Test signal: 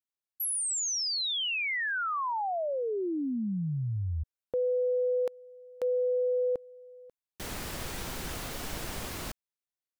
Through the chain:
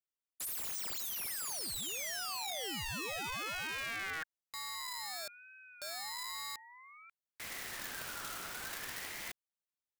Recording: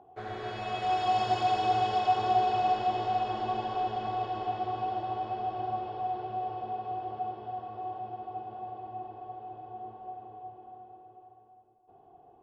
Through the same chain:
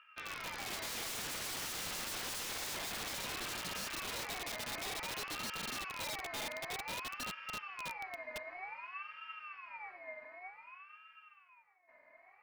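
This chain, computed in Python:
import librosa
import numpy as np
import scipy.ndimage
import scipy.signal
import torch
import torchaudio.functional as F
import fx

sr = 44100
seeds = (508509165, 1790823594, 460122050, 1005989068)

y = (np.mod(10.0 ** (30.5 / 20.0) * x + 1.0, 2.0) - 1.0) / 10.0 ** (30.5 / 20.0)
y = fx.ring_lfo(y, sr, carrier_hz=1700.0, swing_pct=20, hz=0.54)
y = F.gain(torch.from_numpy(y), -3.0).numpy()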